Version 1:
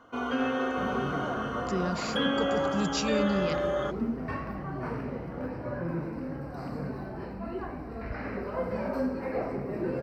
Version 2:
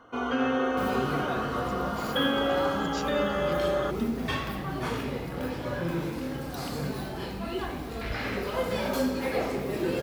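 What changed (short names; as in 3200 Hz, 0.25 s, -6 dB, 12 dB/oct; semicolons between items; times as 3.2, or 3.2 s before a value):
speech -8.5 dB; second sound: remove running mean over 13 samples; reverb: on, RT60 0.85 s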